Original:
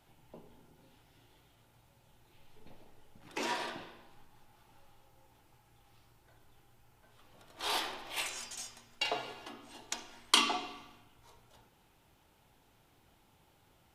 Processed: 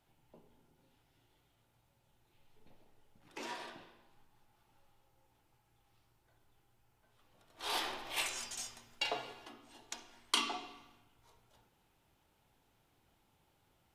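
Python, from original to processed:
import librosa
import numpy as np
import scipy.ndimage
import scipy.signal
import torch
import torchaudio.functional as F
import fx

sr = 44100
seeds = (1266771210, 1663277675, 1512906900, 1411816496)

y = fx.gain(x, sr, db=fx.line((7.49, -8.5), (7.89, 0.5), (8.68, 0.5), (9.62, -6.5)))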